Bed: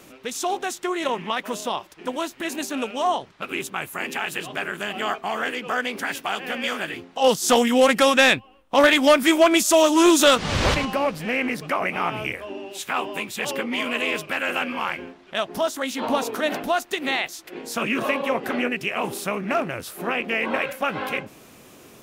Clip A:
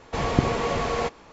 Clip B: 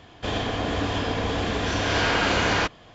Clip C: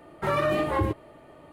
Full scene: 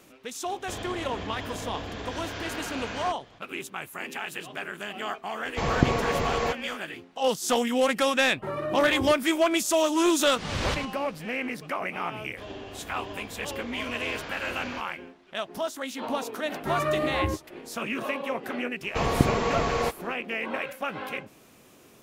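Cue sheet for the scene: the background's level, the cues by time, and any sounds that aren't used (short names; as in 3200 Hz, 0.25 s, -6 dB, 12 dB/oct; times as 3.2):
bed -7 dB
0.45 add B -4.5 dB + compressor, threshold -28 dBFS
5.44 add A -1 dB
8.2 add C -12 dB + bell 330 Hz +8 dB 2.9 oct
12.14 add B -17 dB
16.43 add C -4.5 dB + doubler 13 ms -4.5 dB
18.82 add A -0.5 dB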